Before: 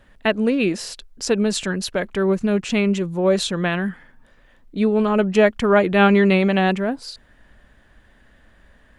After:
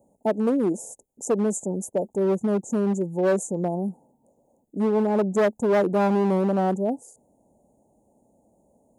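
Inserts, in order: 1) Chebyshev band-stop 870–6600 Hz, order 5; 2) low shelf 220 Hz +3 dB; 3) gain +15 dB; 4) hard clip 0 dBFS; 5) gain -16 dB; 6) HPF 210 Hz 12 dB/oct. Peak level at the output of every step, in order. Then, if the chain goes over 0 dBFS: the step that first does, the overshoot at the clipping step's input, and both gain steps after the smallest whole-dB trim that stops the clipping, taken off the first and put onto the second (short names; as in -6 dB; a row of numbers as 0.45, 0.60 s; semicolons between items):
-6.5, -5.5, +9.5, 0.0, -16.0, -11.5 dBFS; step 3, 9.5 dB; step 3 +5 dB, step 5 -6 dB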